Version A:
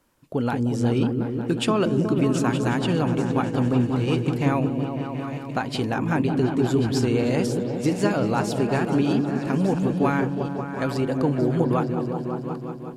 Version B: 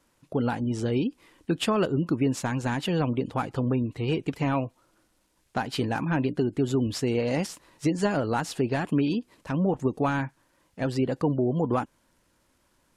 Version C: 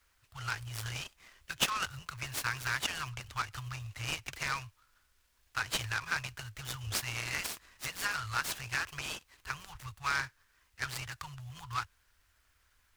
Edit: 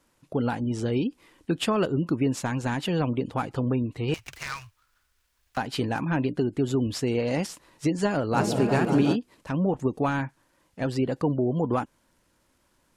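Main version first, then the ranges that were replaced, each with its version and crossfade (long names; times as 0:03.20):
B
0:04.14–0:05.57: punch in from C
0:08.34–0:09.14: punch in from A, crossfade 0.06 s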